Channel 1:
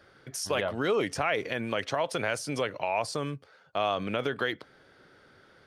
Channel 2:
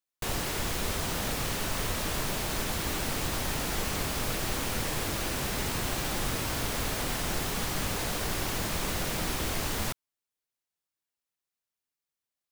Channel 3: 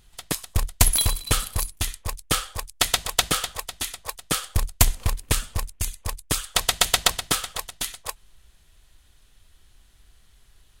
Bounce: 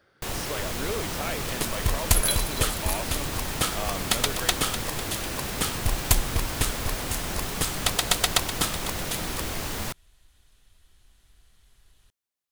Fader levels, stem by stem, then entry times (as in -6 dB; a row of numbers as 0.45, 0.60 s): -6.0, 0.0, -3.5 dB; 0.00, 0.00, 1.30 s